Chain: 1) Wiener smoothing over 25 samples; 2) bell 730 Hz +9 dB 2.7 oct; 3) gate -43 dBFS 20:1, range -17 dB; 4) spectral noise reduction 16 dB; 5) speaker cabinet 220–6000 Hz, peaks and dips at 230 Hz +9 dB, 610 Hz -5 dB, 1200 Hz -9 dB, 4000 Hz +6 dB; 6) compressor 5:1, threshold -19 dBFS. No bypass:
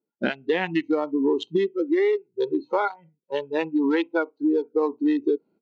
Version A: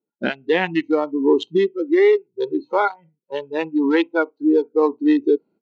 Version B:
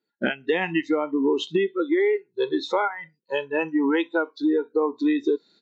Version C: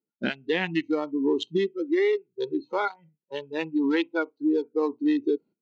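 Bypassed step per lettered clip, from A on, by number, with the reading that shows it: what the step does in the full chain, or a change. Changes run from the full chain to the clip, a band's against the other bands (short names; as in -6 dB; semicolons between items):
6, mean gain reduction 3.5 dB; 1, 4 kHz band +3.5 dB; 2, momentary loudness spread change +2 LU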